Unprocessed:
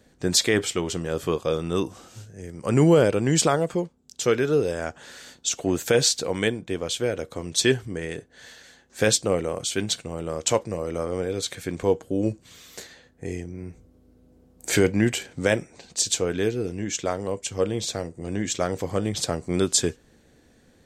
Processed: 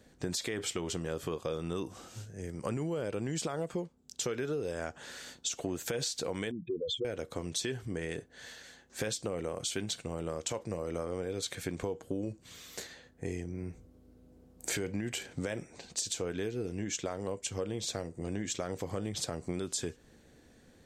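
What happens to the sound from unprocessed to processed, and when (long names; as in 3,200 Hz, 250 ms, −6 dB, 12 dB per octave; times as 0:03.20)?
0:06.51–0:07.05: expanding power law on the bin magnitudes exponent 3.7
whole clip: brickwall limiter −14.5 dBFS; downward compressor, threshold −29 dBFS; level −2.5 dB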